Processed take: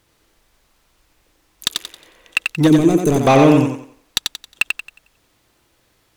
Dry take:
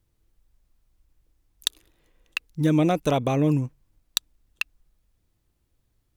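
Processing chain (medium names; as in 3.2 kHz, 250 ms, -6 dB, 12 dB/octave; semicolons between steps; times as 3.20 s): overdrive pedal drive 23 dB, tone 4.7 kHz, clips at -4.5 dBFS; time-frequency box 2.68–3.27 s, 460–6000 Hz -15 dB; thinning echo 90 ms, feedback 34%, high-pass 190 Hz, level -4 dB; trim +3.5 dB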